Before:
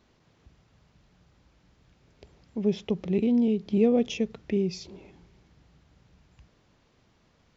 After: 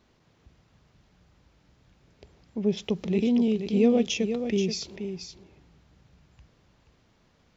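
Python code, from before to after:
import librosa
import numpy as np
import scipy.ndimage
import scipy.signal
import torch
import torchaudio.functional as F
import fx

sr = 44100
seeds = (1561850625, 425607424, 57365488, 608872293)

y = fx.high_shelf(x, sr, hz=3000.0, db=10.5, at=(2.77, 4.96))
y = y + 10.0 ** (-8.5 / 20.0) * np.pad(y, (int(479 * sr / 1000.0), 0))[:len(y)]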